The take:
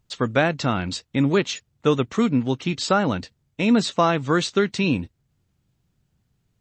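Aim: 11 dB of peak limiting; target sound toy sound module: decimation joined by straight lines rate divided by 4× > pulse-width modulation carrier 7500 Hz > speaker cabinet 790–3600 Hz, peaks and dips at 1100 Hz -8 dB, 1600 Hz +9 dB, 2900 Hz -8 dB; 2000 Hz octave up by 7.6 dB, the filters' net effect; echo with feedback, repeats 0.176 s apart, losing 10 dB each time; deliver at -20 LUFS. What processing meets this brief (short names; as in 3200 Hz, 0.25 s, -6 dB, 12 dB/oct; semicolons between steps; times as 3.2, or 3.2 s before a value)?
bell 2000 Hz +5 dB; limiter -13.5 dBFS; feedback echo 0.176 s, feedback 32%, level -10 dB; decimation joined by straight lines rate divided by 4×; pulse-width modulation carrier 7500 Hz; speaker cabinet 790–3600 Hz, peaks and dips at 1100 Hz -8 dB, 1600 Hz +9 dB, 2900 Hz -8 dB; gain +11 dB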